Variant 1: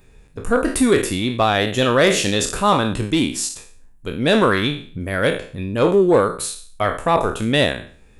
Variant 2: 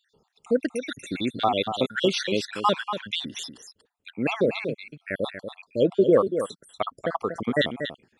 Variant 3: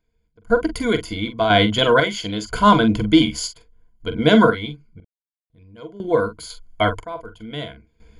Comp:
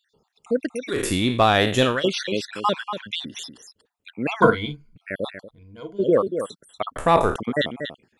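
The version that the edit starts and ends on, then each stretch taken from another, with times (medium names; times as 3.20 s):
2
0.99–1.92 s: from 1, crossfade 0.24 s
4.42–4.96 s: from 3
5.46–6.00 s: from 3, crossfade 0.10 s
6.96–7.36 s: from 1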